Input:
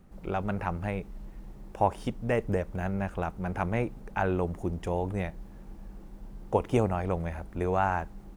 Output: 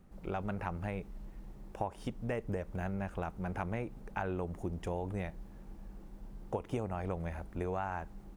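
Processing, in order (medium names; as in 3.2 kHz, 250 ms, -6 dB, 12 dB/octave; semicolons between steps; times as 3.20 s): compression 6:1, threshold -28 dBFS, peak gain reduction 10 dB; trim -4 dB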